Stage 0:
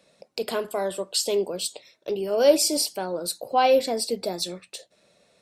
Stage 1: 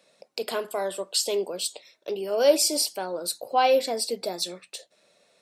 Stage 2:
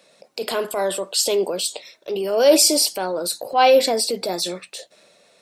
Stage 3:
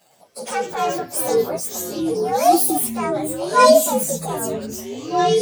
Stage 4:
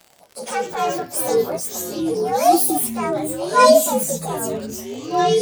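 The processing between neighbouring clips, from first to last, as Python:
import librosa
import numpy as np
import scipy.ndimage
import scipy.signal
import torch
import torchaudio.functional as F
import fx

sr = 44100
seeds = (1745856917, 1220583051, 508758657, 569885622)

y1 = fx.highpass(x, sr, hz=380.0, slope=6)
y2 = fx.transient(y1, sr, attack_db=-6, sustain_db=3)
y2 = y2 * librosa.db_to_amplitude(7.5)
y3 = fx.partial_stretch(y2, sr, pct=125)
y3 = fx.echo_pitch(y3, sr, ms=106, semitones=-6, count=3, db_per_echo=-6.0)
y3 = y3 * librosa.db_to_amplitude(3.0)
y4 = fx.dmg_crackle(y3, sr, seeds[0], per_s=70.0, level_db=-30.0)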